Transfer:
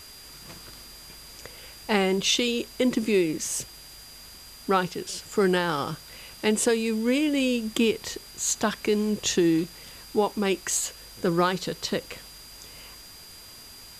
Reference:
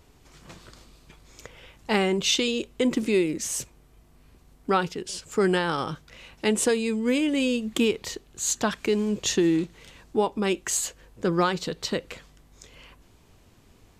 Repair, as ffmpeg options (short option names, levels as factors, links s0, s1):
-af "bandreject=f=4800:w=30,afwtdn=0.0045"